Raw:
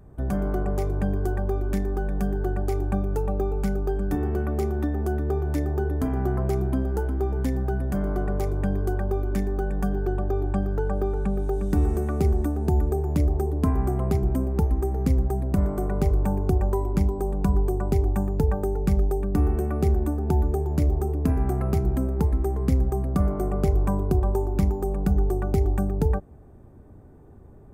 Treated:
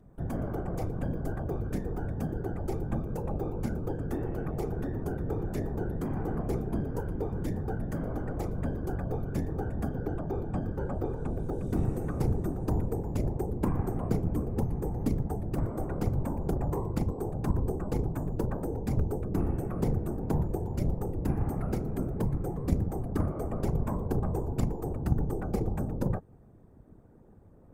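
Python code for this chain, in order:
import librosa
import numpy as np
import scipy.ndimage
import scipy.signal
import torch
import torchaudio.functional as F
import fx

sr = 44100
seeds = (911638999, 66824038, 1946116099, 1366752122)

y = fx.cheby_harmonics(x, sr, harmonics=(2, 4), levels_db=(-7, -16), full_scale_db=-10.5)
y = fx.whisperise(y, sr, seeds[0])
y = y * librosa.db_to_amplitude(-7.0)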